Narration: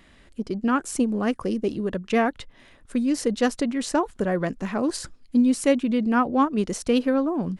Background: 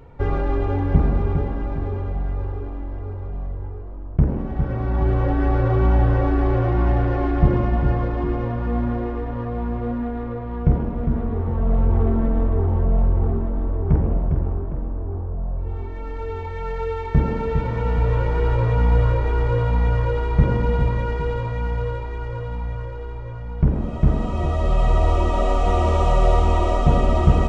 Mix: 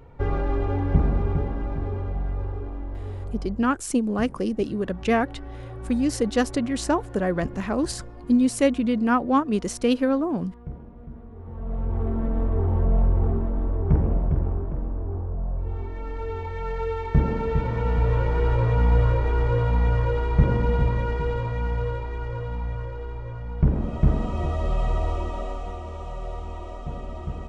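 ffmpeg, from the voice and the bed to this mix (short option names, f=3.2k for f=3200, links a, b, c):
-filter_complex "[0:a]adelay=2950,volume=0dB[a];[1:a]volume=14dB,afade=t=out:st=3.32:d=0.5:silence=0.158489,afade=t=in:st=11.34:d=1.48:silence=0.141254,afade=t=out:st=24:d=1.81:silence=0.177828[b];[a][b]amix=inputs=2:normalize=0"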